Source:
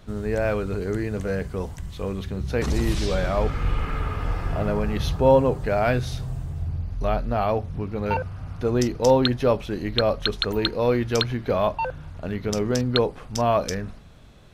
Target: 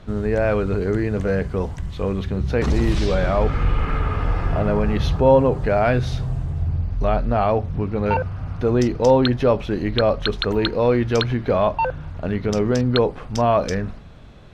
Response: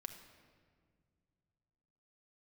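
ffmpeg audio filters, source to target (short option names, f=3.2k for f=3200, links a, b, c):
-filter_complex "[0:a]aemphasis=mode=reproduction:type=50fm,asplit=2[a][b];[b]alimiter=limit=-18dB:level=0:latency=1:release=76,volume=-1dB[c];[a][c]amix=inputs=2:normalize=0"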